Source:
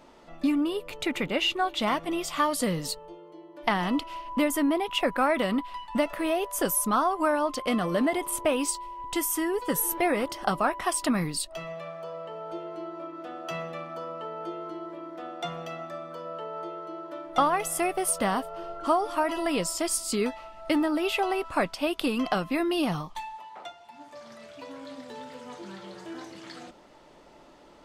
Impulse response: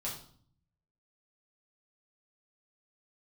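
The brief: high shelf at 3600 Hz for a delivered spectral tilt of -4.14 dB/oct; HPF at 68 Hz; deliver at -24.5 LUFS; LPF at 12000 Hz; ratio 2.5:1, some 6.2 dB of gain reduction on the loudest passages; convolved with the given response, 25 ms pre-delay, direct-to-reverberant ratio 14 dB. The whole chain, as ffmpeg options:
-filter_complex "[0:a]highpass=68,lowpass=12k,highshelf=f=3.6k:g=-6.5,acompressor=threshold=-29dB:ratio=2.5,asplit=2[a][b];[1:a]atrim=start_sample=2205,adelay=25[c];[b][c]afir=irnorm=-1:irlink=0,volume=-15.5dB[d];[a][d]amix=inputs=2:normalize=0,volume=9dB"

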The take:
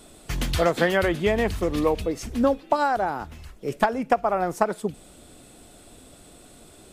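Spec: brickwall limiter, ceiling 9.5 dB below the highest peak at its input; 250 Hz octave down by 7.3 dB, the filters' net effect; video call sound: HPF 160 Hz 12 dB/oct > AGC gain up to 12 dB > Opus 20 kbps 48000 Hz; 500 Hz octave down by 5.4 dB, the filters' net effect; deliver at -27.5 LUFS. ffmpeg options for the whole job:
-af "equalizer=f=250:t=o:g=-7,equalizer=f=500:t=o:g=-5,alimiter=limit=-17.5dB:level=0:latency=1,highpass=160,dynaudnorm=m=12dB,volume=4dB" -ar 48000 -c:a libopus -b:a 20k

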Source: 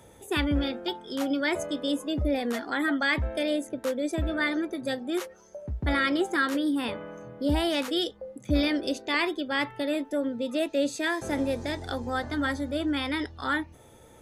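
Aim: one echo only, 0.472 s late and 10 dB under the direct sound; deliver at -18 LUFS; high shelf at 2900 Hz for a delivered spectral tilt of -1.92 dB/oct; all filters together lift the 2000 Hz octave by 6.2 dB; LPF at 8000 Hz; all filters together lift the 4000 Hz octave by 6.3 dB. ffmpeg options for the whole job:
-af "lowpass=8k,equalizer=f=2k:t=o:g=5.5,highshelf=f=2.9k:g=3.5,equalizer=f=4k:t=o:g=3.5,aecho=1:1:472:0.316,volume=7dB"

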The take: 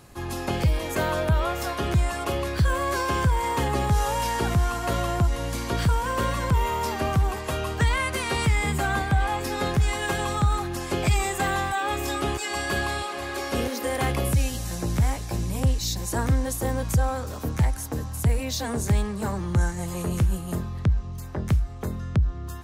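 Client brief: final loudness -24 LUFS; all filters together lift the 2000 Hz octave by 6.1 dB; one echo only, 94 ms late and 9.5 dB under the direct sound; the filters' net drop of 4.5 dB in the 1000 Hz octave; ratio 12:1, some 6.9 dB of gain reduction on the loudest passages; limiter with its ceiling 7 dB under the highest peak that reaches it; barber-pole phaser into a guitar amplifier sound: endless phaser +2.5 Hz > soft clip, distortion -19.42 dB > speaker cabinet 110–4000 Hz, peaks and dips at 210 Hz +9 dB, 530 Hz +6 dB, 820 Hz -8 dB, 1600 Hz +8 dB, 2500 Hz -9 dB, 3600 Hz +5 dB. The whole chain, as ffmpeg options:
-filter_complex "[0:a]equalizer=f=1k:t=o:g=-4,equalizer=f=2k:t=o:g=3.5,acompressor=threshold=-23dB:ratio=12,alimiter=limit=-21.5dB:level=0:latency=1,aecho=1:1:94:0.335,asplit=2[a][b];[b]afreqshift=2.5[c];[a][c]amix=inputs=2:normalize=1,asoftclip=threshold=-25dB,highpass=110,equalizer=f=210:t=q:w=4:g=9,equalizer=f=530:t=q:w=4:g=6,equalizer=f=820:t=q:w=4:g=-8,equalizer=f=1.6k:t=q:w=4:g=8,equalizer=f=2.5k:t=q:w=4:g=-9,equalizer=f=3.6k:t=q:w=4:g=5,lowpass=f=4k:w=0.5412,lowpass=f=4k:w=1.3066,volume=9.5dB"

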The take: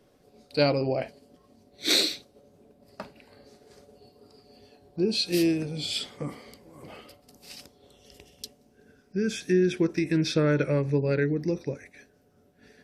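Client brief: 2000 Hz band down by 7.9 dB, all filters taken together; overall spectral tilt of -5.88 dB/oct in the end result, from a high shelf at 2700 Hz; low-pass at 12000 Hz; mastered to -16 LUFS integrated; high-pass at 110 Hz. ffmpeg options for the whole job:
-af "highpass=110,lowpass=12k,equalizer=f=2k:t=o:g=-8,highshelf=f=2.7k:g=-6,volume=12dB"

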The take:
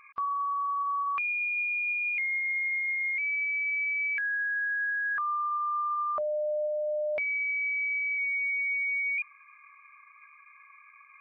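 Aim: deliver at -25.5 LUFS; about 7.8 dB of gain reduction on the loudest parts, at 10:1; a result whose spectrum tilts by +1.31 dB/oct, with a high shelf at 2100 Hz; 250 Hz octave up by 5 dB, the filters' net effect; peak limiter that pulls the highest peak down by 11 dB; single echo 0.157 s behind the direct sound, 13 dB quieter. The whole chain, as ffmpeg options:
-af "equalizer=f=250:t=o:g=7,highshelf=f=2.1k:g=-5,acompressor=threshold=-37dB:ratio=10,alimiter=level_in=13.5dB:limit=-24dB:level=0:latency=1,volume=-13.5dB,aecho=1:1:157:0.224,volume=13.5dB"

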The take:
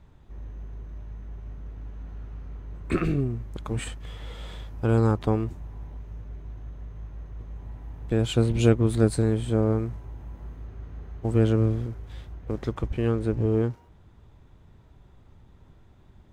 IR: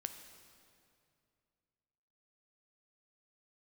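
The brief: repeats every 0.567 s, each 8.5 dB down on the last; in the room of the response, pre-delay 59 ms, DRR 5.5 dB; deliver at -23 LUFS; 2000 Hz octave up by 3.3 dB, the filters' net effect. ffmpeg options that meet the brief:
-filter_complex "[0:a]equalizer=f=2k:t=o:g=4.5,aecho=1:1:567|1134|1701|2268:0.376|0.143|0.0543|0.0206,asplit=2[a][b];[1:a]atrim=start_sample=2205,adelay=59[c];[b][c]afir=irnorm=-1:irlink=0,volume=-3.5dB[d];[a][d]amix=inputs=2:normalize=0,volume=3.5dB"

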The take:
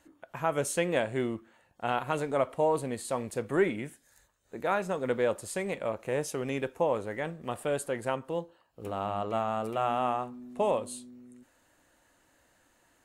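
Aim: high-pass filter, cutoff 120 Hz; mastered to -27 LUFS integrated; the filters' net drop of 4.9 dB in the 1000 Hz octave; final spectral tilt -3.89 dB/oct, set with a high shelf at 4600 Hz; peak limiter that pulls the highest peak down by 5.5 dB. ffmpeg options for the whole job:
-af "highpass=120,equalizer=f=1k:t=o:g=-7.5,highshelf=f=4.6k:g=8,volume=7dB,alimiter=limit=-13dB:level=0:latency=1"

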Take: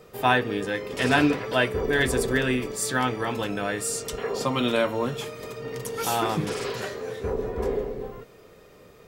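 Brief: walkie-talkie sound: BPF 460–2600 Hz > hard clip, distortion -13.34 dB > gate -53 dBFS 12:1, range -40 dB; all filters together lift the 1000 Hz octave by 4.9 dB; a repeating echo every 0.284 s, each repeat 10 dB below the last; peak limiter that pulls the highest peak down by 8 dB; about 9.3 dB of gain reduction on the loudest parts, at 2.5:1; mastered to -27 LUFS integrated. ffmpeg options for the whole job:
-af "equalizer=f=1k:t=o:g=7,acompressor=threshold=-26dB:ratio=2.5,alimiter=limit=-18.5dB:level=0:latency=1,highpass=460,lowpass=2.6k,aecho=1:1:284|568|852|1136:0.316|0.101|0.0324|0.0104,asoftclip=type=hard:threshold=-28dB,agate=range=-40dB:threshold=-53dB:ratio=12,volume=7dB"

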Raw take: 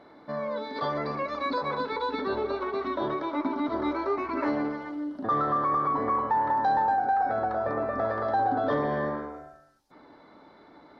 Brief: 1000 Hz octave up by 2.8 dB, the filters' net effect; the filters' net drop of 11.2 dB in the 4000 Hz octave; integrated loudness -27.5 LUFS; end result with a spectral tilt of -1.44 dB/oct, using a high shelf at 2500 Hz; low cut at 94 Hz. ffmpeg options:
-af "highpass=94,equalizer=f=1k:t=o:g=5,highshelf=f=2.5k:g=-7,equalizer=f=4k:t=o:g=-7,volume=-1dB"

